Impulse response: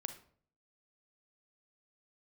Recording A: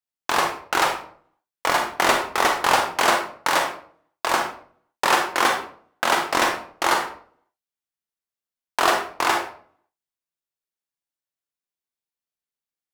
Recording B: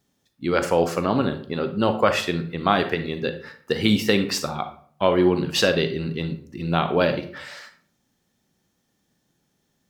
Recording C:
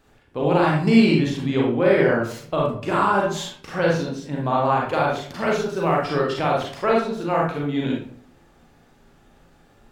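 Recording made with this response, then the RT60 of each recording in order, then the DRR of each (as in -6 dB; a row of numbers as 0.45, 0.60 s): B; 0.50, 0.55, 0.50 s; 2.5, 8.0, -3.0 dB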